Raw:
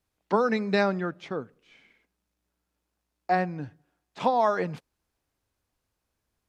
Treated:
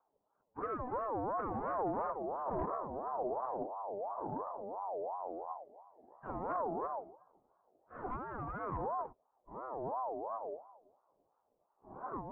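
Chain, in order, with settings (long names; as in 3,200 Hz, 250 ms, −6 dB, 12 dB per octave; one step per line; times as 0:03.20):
in parallel at −11.5 dB: sine wavefolder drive 20 dB, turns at −10.5 dBFS
on the sum: transistor ladder low-pass 590 Hz, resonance 20%
time stretch by phase vocoder 1.9×
delay with pitch and tempo change per echo 661 ms, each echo −6 semitones, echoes 2
soft clipping −25 dBFS, distortion −17 dB
ring modulator whose carrier an LFO sweeps 700 Hz, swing 30%, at 2.9 Hz
level −2.5 dB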